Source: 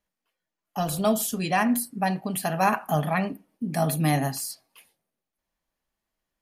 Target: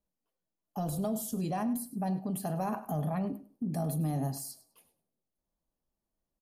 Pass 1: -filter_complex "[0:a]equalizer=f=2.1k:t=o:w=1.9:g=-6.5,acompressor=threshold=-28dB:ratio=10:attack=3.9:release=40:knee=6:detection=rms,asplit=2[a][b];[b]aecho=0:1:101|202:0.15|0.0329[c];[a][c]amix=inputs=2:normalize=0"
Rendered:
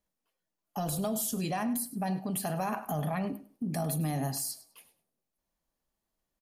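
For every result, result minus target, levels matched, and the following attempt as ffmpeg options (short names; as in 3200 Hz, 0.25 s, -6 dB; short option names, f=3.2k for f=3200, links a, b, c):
2000 Hz band +6.5 dB; 8000 Hz band +5.5 dB
-filter_complex "[0:a]equalizer=f=2.1k:t=o:w=1.9:g=-16.5,acompressor=threshold=-28dB:ratio=10:attack=3.9:release=40:knee=6:detection=rms,asplit=2[a][b];[b]aecho=0:1:101|202:0.15|0.0329[c];[a][c]amix=inputs=2:normalize=0"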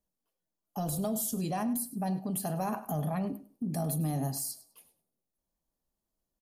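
8000 Hz band +5.0 dB
-filter_complex "[0:a]equalizer=f=2.1k:t=o:w=1.9:g=-16.5,acompressor=threshold=-28dB:ratio=10:attack=3.9:release=40:knee=6:detection=rms,highshelf=f=3k:g=-6.5,asplit=2[a][b];[b]aecho=0:1:101|202:0.15|0.0329[c];[a][c]amix=inputs=2:normalize=0"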